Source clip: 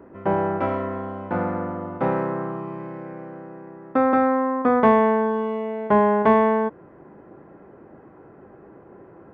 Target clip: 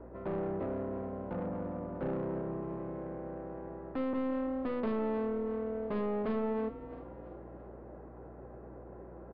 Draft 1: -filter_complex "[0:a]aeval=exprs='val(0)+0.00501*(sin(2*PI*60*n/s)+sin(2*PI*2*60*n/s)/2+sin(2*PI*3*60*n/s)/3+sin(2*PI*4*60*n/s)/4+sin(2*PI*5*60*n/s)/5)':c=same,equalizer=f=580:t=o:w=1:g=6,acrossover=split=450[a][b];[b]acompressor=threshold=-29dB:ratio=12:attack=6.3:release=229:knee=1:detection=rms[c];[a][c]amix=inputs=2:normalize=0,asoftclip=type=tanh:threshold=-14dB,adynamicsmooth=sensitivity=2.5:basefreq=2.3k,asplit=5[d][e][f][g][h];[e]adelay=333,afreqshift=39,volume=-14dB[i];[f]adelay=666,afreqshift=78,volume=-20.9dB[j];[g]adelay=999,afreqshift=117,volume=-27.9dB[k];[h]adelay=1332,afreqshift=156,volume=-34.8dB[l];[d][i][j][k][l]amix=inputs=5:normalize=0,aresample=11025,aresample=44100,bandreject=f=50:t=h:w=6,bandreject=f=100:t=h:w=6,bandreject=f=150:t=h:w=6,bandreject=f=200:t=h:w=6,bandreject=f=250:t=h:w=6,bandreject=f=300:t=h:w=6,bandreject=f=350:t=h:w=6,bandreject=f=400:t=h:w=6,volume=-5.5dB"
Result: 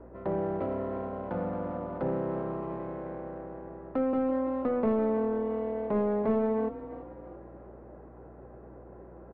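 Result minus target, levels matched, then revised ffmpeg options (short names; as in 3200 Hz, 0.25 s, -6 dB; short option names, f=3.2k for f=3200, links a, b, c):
compressor: peak gain reduction -7.5 dB; soft clip: distortion -10 dB
-filter_complex "[0:a]aeval=exprs='val(0)+0.00501*(sin(2*PI*60*n/s)+sin(2*PI*2*60*n/s)/2+sin(2*PI*3*60*n/s)/3+sin(2*PI*4*60*n/s)/4+sin(2*PI*5*60*n/s)/5)':c=same,equalizer=f=580:t=o:w=1:g=6,acrossover=split=450[a][b];[b]acompressor=threshold=-37dB:ratio=12:attack=6.3:release=229:knee=1:detection=rms[c];[a][c]amix=inputs=2:normalize=0,asoftclip=type=tanh:threshold=-24.5dB,adynamicsmooth=sensitivity=2.5:basefreq=2.3k,asplit=5[d][e][f][g][h];[e]adelay=333,afreqshift=39,volume=-14dB[i];[f]adelay=666,afreqshift=78,volume=-20.9dB[j];[g]adelay=999,afreqshift=117,volume=-27.9dB[k];[h]adelay=1332,afreqshift=156,volume=-34.8dB[l];[d][i][j][k][l]amix=inputs=5:normalize=0,aresample=11025,aresample=44100,bandreject=f=50:t=h:w=6,bandreject=f=100:t=h:w=6,bandreject=f=150:t=h:w=6,bandreject=f=200:t=h:w=6,bandreject=f=250:t=h:w=6,bandreject=f=300:t=h:w=6,bandreject=f=350:t=h:w=6,bandreject=f=400:t=h:w=6,volume=-5.5dB"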